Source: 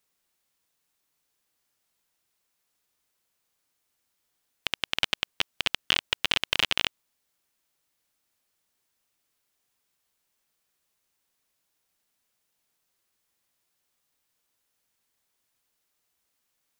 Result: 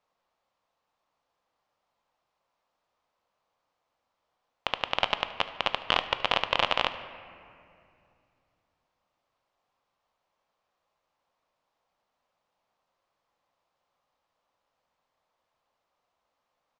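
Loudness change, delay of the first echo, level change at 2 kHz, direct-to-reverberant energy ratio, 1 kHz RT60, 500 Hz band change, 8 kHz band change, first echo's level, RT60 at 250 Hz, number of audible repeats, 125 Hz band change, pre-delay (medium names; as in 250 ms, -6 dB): -1.0 dB, 74 ms, -1.5 dB, 10.0 dB, 2.3 s, +8.5 dB, -12.5 dB, -20.0 dB, 3.2 s, 1, 0.0 dB, 4 ms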